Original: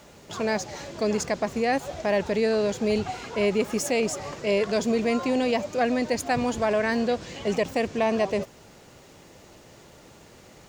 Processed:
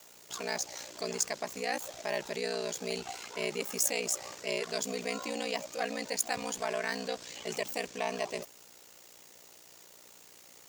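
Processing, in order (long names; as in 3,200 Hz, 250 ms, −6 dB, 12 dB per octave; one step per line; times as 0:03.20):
RIAA equalisation recording
ring modulation 30 Hz
level −6 dB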